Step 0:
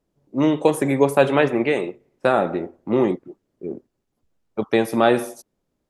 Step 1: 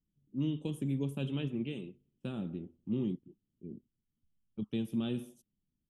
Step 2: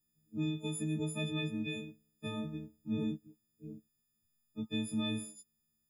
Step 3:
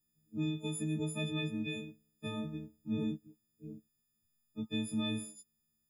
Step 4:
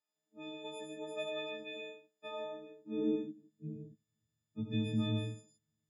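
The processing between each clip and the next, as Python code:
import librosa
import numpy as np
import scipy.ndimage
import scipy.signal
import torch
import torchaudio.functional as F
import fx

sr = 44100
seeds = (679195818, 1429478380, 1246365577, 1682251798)

y1 = fx.curve_eq(x, sr, hz=(210.0, 670.0, 1300.0, 2000.0, 3100.0, 4400.0, 7400.0), db=(0, -28, -24, -27, -2, -22, -15))
y1 = y1 * 10.0 ** (-7.0 / 20.0)
y2 = fx.freq_snap(y1, sr, grid_st=6)
y2 = y2 * 10.0 ** (-1.5 / 20.0)
y3 = y2
y4 = fx.filter_sweep_highpass(y3, sr, from_hz=680.0, to_hz=110.0, start_s=2.47, end_s=3.9, q=2.8)
y4 = fx.air_absorb(y4, sr, metres=110.0)
y4 = fx.echo_multitap(y4, sr, ms=(77, 93, 120, 124, 154), db=(-10.0, -9.5, -6.0, -16.5, -6.5))
y4 = y4 * 10.0 ** (-2.5 / 20.0)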